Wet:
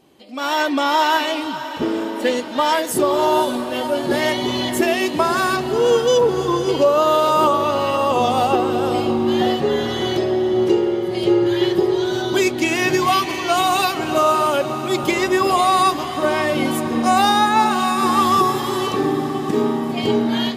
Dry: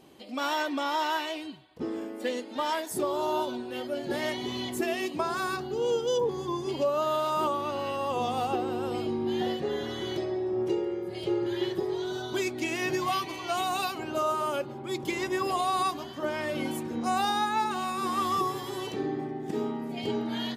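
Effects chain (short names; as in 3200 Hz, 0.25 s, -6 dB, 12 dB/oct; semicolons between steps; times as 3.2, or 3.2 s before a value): AGC gain up to 12 dB; on a send: diffused feedback echo 0.538 s, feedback 58%, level -12 dB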